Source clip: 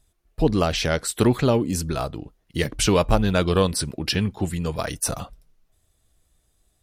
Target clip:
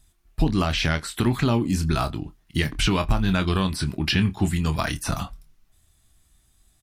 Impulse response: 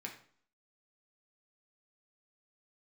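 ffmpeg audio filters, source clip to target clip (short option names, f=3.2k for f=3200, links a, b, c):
-filter_complex "[0:a]asplit=2[a][b];[1:a]atrim=start_sample=2205,atrim=end_sample=6174[c];[b][c]afir=irnorm=-1:irlink=0,volume=-19.5dB[d];[a][d]amix=inputs=2:normalize=0,acrossover=split=3800[e][f];[f]acompressor=threshold=-37dB:ratio=4:attack=1:release=60[g];[e][g]amix=inputs=2:normalize=0,asplit=2[h][i];[i]adelay=26,volume=-10dB[j];[h][j]amix=inputs=2:normalize=0,alimiter=limit=-12dB:level=0:latency=1:release=291,equalizer=f=500:t=o:w=0.7:g=-14,volume=4.5dB"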